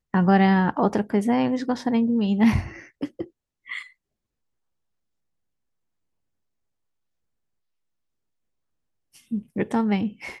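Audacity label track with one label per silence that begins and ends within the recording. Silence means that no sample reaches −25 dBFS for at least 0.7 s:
3.790000	9.320000	silence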